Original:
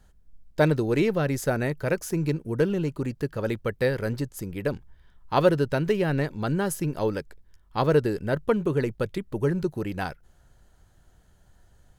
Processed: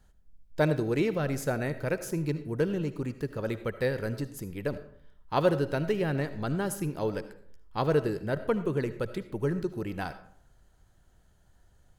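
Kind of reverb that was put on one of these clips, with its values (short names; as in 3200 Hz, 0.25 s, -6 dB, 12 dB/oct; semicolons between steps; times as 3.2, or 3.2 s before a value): digital reverb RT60 0.63 s, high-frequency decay 0.55×, pre-delay 35 ms, DRR 12 dB; gain -4.5 dB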